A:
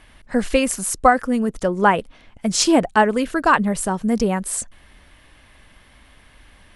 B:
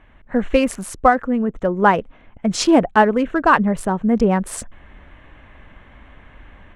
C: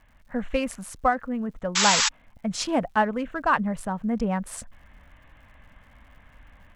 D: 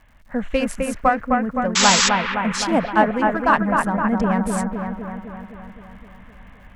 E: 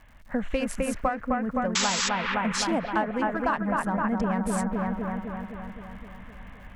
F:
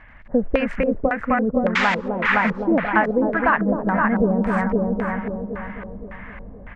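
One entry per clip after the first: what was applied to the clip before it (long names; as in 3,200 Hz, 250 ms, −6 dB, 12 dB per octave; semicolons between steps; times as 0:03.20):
adaptive Wiener filter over 9 samples; high-shelf EQ 5,400 Hz −12 dB; automatic gain control gain up to 7 dB
parametric band 370 Hz −11 dB 0.53 octaves; sound drawn into the spectrogram noise, 0:01.75–0:02.09, 830–7,900 Hz −14 dBFS; surface crackle 150 per second −46 dBFS; level −7.5 dB
bucket-brigade delay 258 ms, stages 4,096, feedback 63%, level −3.5 dB; level +4.5 dB
downward compressor 6 to 1, threshold −23 dBFS, peak gain reduction 13 dB
single-tap delay 497 ms −13 dB; auto-filter low-pass square 1.8 Hz 470–2,000 Hz; level +5.5 dB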